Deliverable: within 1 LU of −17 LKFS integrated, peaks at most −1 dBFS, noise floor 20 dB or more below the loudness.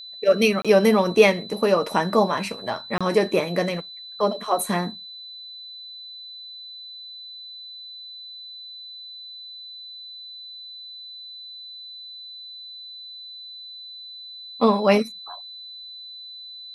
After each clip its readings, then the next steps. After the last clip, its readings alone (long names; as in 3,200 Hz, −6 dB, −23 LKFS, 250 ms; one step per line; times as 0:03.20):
number of dropouts 2; longest dropout 26 ms; interfering tone 4,000 Hz; level of the tone −37 dBFS; integrated loudness −21.0 LKFS; sample peak −3.0 dBFS; target loudness −17.0 LKFS
→ repair the gap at 0:00.62/0:02.98, 26 ms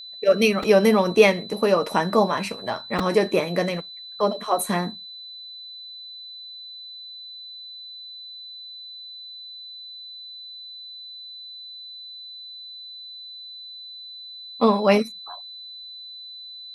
number of dropouts 0; interfering tone 4,000 Hz; level of the tone −37 dBFS
→ notch filter 4,000 Hz, Q 30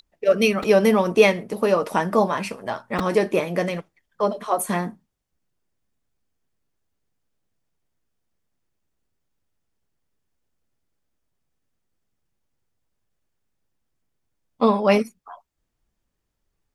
interfering tone none found; integrated loudness −21.0 LKFS; sample peak −3.0 dBFS; target loudness −17.0 LKFS
→ level +4 dB
brickwall limiter −1 dBFS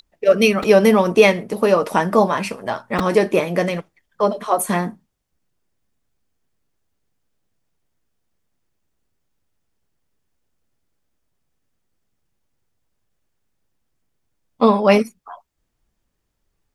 integrated loudness −17.0 LKFS; sample peak −1.0 dBFS; background noise floor −73 dBFS